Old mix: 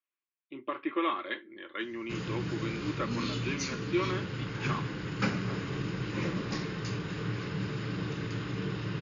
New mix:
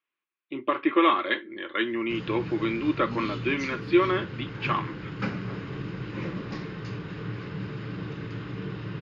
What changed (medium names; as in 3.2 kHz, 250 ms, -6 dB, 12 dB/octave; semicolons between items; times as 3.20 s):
speech +9.5 dB; background: add distance through air 170 m